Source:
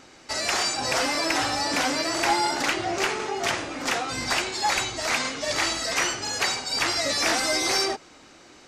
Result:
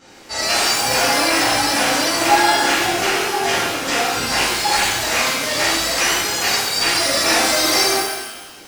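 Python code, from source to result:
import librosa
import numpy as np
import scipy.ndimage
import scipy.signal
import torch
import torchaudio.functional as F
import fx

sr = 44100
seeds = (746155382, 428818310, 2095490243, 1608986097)

y = fx.rev_shimmer(x, sr, seeds[0], rt60_s=1.1, semitones=12, shimmer_db=-8, drr_db=-11.5)
y = y * 10.0 ** (-4.5 / 20.0)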